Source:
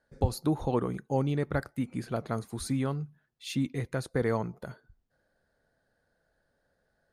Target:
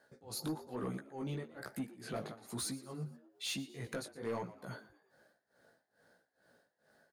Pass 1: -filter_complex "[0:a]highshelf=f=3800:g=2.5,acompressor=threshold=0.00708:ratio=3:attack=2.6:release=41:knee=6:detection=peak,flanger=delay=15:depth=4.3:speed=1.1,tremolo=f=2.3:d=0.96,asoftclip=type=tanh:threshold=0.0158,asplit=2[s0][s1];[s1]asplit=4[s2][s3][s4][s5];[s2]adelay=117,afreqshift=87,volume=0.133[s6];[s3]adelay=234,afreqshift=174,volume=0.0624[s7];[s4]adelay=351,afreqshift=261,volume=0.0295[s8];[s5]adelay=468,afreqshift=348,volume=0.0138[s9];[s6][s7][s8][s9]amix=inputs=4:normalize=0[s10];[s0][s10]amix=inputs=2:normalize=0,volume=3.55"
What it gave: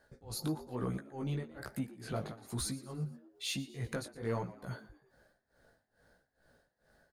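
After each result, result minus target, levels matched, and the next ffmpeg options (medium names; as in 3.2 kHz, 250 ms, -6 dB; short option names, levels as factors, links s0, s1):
saturation: distortion -9 dB; 125 Hz band +3.5 dB
-filter_complex "[0:a]highshelf=f=3800:g=2.5,acompressor=threshold=0.00708:ratio=3:attack=2.6:release=41:knee=6:detection=peak,flanger=delay=15:depth=4.3:speed=1.1,tremolo=f=2.3:d=0.96,asoftclip=type=tanh:threshold=0.0075,asplit=2[s0][s1];[s1]asplit=4[s2][s3][s4][s5];[s2]adelay=117,afreqshift=87,volume=0.133[s6];[s3]adelay=234,afreqshift=174,volume=0.0624[s7];[s4]adelay=351,afreqshift=261,volume=0.0295[s8];[s5]adelay=468,afreqshift=348,volume=0.0138[s9];[s6][s7][s8][s9]amix=inputs=4:normalize=0[s10];[s0][s10]amix=inputs=2:normalize=0,volume=3.55"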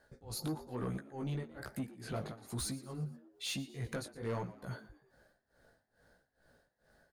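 125 Hz band +3.5 dB
-filter_complex "[0:a]highshelf=f=3800:g=2.5,acompressor=threshold=0.00708:ratio=3:attack=2.6:release=41:knee=6:detection=peak,highpass=170,flanger=delay=15:depth=4.3:speed=1.1,tremolo=f=2.3:d=0.96,asoftclip=type=tanh:threshold=0.0075,asplit=2[s0][s1];[s1]asplit=4[s2][s3][s4][s5];[s2]adelay=117,afreqshift=87,volume=0.133[s6];[s3]adelay=234,afreqshift=174,volume=0.0624[s7];[s4]adelay=351,afreqshift=261,volume=0.0295[s8];[s5]adelay=468,afreqshift=348,volume=0.0138[s9];[s6][s7][s8][s9]amix=inputs=4:normalize=0[s10];[s0][s10]amix=inputs=2:normalize=0,volume=3.55"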